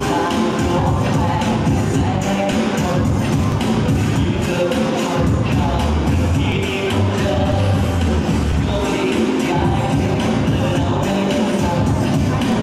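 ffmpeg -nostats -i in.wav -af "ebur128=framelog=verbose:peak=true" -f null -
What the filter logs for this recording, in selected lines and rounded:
Integrated loudness:
  I:         -17.5 LUFS
  Threshold: -27.5 LUFS
Loudness range:
  LRA:         0.3 LU
  Threshold: -37.5 LUFS
  LRA low:   -17.6 LUFS
  LRA high:  -17.4 LUFS
True peak:
  Peak:       -6.4 dBFS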